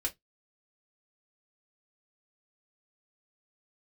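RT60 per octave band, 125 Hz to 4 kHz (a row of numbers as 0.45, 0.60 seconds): 0.20, 0.20, 0.15, 0.15, 0.15, 0.15 seconds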